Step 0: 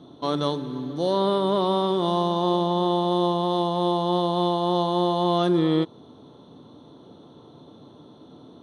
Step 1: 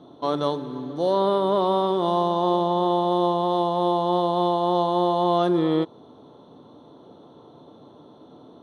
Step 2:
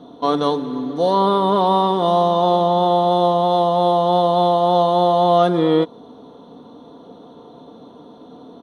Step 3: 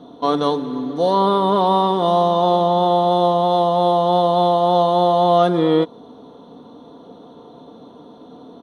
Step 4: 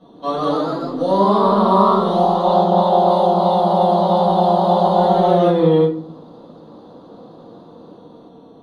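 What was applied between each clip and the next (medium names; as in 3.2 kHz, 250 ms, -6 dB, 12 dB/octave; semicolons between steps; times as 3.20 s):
peaking EQ 710 Hz +7.5 dB 2.4 oct; trim -4.5 dB
comb 4.2 ms, depth 50%; trim +5.5 dB
no audible change
reverberation RT60 0.45 s, pre-delay 3 ms, DRR -7.5 dB; ever faster or slower copies 146 ms, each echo +1 st, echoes 3; trim -13 dB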